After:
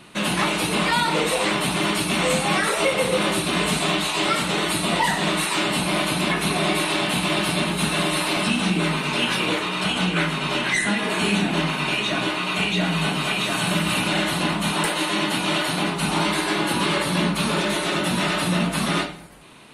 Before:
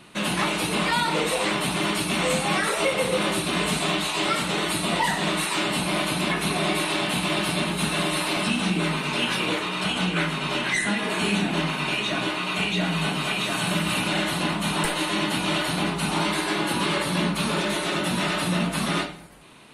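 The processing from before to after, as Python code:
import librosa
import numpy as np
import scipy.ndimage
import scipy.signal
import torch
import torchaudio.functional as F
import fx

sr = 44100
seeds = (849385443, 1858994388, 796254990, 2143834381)

y = fx.highpass(x, sr, hz=140.0, slope=6, at=(14.7, 16.0))
y = y * librosa.db_to_amplitude(2.5)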